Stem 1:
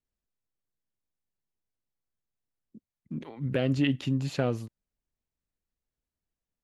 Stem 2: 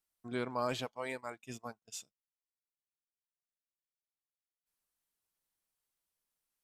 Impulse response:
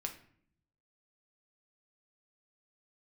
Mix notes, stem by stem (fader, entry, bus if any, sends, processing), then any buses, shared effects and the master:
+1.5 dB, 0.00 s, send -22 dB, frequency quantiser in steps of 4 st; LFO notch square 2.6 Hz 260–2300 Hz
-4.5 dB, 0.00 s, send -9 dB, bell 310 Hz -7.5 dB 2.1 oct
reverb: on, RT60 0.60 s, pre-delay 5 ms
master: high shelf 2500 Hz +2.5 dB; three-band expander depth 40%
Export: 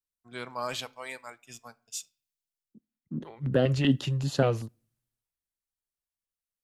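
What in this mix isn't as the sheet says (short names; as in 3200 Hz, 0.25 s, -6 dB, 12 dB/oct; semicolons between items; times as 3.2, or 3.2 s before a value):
stem 1: missing frequency quantiser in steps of 4 st; stem 2 -4.5 dB -> +1.5 dB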